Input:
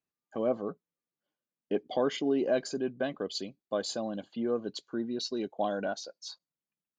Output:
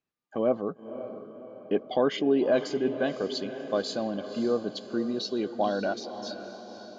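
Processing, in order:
low-pass filter 4,700 Hz 12 dB per octave
feedback delay with all-pass diffusion 543 ms, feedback 52%, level −11 dB
level +4 dB

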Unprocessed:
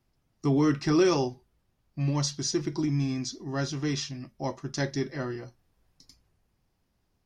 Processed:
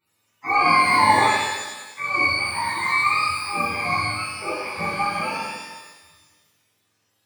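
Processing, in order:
frequency axis turned over on the octave scale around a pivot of 570 Hz
low-shelf EQ 380 Hz −12 dB
reverb with rising layers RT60 1.2 s, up +12 semitones, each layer −8 dB, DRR −11.5 dB

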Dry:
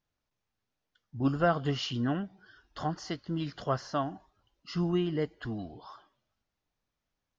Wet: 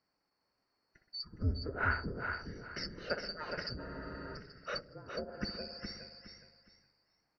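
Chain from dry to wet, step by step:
band-splitting scrambler in four parts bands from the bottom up 2341
low-shelf EQ 120 Hz −8 dB
spring reverb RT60 1.1 s, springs 59 ms, chirp 80 ms, DRR 7.5 dB
treble cut that deepens with the level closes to 340 Hz, closed at −25 dBFS
moving average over 13 samples
on a send: repeating echo 415 ms, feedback 27%, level −6 dB
on the sum: frozen spectrum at 0:03.80, 0.55 s
level +11.5 dB

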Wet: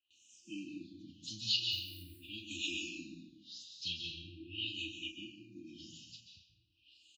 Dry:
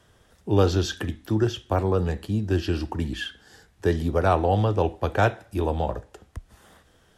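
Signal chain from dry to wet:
hearing-aid frequency compression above 2,300 Hz 1.5 to 1
noise gate with hold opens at −50 dBFS
brick-wall band-stop 350–2,400 Hz
dynamic equaliser 3,900 Hz, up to +5 dB, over −54 dBFS, Q 1.9
auto-filter low-pass sine 0.88 Hz 530–7,200 Hz
0:01.58–0:02.03: floating-point word with a short mantissa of 6 bits
first difference
double-tracking delay 34 ms −8 dB
dense smooth reverb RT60 0.93 s, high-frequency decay 0.8×, pre-delay 120 ms, DRR 2.5 dB
frequency shifter mixed with the dry sound −0.42 Hz
level +8 dB

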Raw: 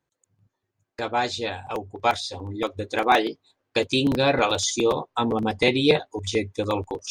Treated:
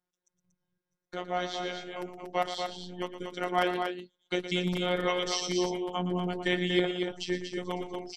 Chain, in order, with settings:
phases set to zero 206 Hz
speed change −13%
loudspeakers that aren't time-aligned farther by 40 metres −11 dB, 81 metres −6 dB
level −6 dB

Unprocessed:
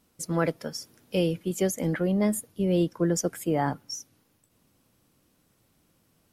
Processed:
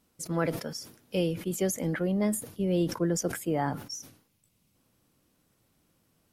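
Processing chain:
gain on a spectral selection 0:04.28–0:04.75, 230–2,000 Hz −6 dB
level that may fall only so fast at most 110 dB per second
level −3 dB

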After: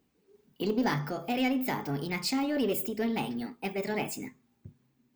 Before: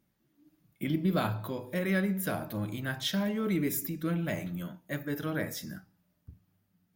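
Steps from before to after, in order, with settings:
in parallel at −3.5 dB: soft clipping −29.5 dBFS, distortion −11 dB
on the sum: wrong playback speed 33 rpm record played at 45 rpm
level −2 dB

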